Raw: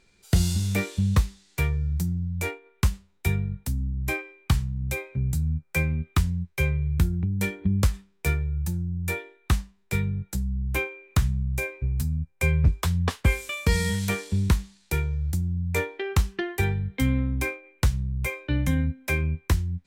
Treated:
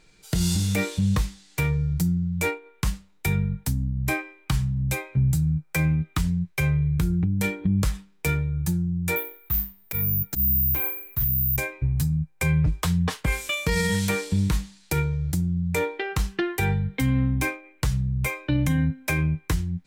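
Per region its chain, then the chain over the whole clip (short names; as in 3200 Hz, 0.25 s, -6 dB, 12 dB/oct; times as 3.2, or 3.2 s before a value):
9.16–11.56 careless resampling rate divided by 3×, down filtered, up zero stuff + bell 77 Hz +6 dB 1.6 oct + auto swell 0.101 s
whole clip: comb 6.5 ms, depth 54%; limiter -18 dBFS; gain +4 dB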